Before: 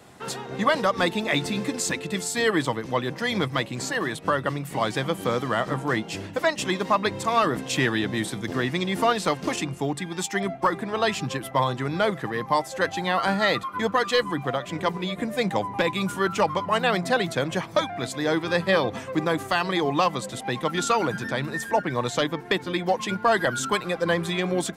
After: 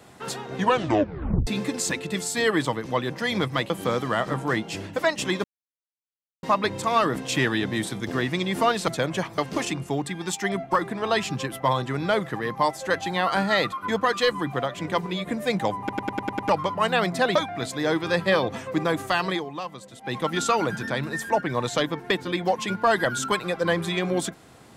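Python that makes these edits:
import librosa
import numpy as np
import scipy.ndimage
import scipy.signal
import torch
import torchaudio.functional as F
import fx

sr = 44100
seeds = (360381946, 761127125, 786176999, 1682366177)

y = fx.edit(x, sr, fx.tape_stop(start_s=0.56, length_s=0.91),
    fx.cut(start_s=3.7, length_s=1.4),
    fx.insert_silence(at_s=6.84, length_s=0.99),
    fx.stutter_over(start_s=15.7, slice_s=0.1, count=7),
    fx.move(start_s=17.26, length_s=0.5, to_s=9.29),
    fx.fade_down_up(start_s=19.72, length_s=0.84, db=-11.5, fade_s=0.14), tone=tone)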